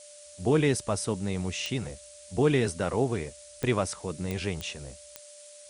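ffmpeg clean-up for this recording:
ffmpeg -i in.wav -af "adeclick=threshold=4,bandreject=frequency=590:width=30,afftdn=noise_reduction=23:noise_floor=-49" out.wav

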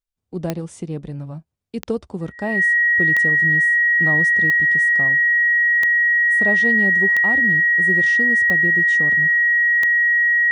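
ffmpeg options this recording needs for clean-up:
ffmpeg -i in.wav -af "adeclick=threshold=4,bandreject=frequency=1900:width=30" out.wav

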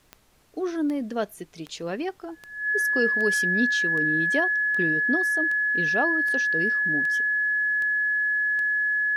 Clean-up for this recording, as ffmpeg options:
ffmpeg -i in.wav -af "adeclick=threshold=4,bandreject=frequency=1700:width=30,agate=range=-21dB:threshold=-40dB" out.wav

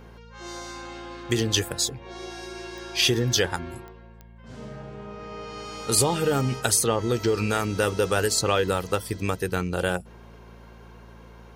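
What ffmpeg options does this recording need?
ffmpeg -i in.wav -af "adeclick=threshold=4,bandreject=frequency=56.6:width_type=h:width=4,bandreject=frequency=113.2:width_type=h:width=4,bandreject=frequency=169.8:width_type=h:width=4,bandreject=frequency=226.4:width_type=h:width=4" out.wav

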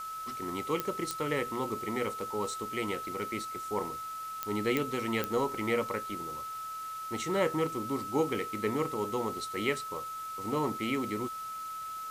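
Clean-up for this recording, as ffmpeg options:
ffmpeg -i in.wav -af "adeclick=threshold=4,bandreject=frequency=1300:width=30,afwtdn=0.0028" out.wav

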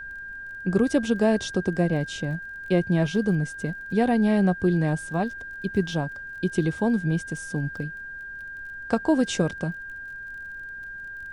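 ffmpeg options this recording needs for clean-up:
ffmpeg -i in.wav -af "adeclick=threshold=4,bandreject=frequency=1600:width=30,agate=range=-21dB:threshold=-30dB" out.wav

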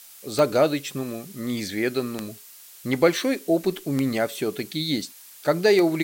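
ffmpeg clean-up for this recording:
ffmpeg -i in.wav -af "adeclick=threshold=4,afftdn=noise_reduction=20:noise_floor=-47" out.wav

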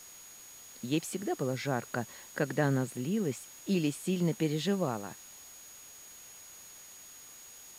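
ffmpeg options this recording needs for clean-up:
ffmpeg -i in.wav -af "adeclick=threshold=4,bandreject=frequency=6700:width=30,afwtdn=0.0022" out.wav

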